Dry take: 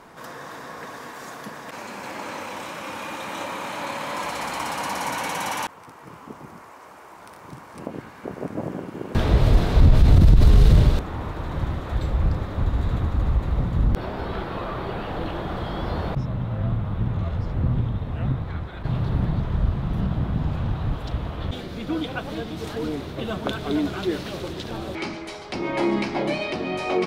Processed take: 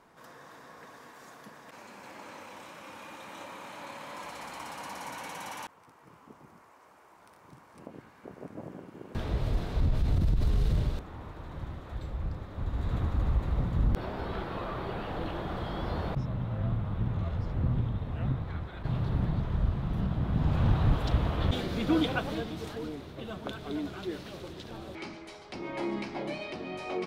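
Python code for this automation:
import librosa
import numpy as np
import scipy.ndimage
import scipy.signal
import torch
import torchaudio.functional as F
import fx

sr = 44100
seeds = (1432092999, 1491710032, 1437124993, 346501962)

y = fx.gain(x, sr, db=fx.line((12.5, -13.0), (12.98, -6.0), (20.19, -6.0), (20.67, 1.0), (22.04, 1.0), (22.95, -11.0)))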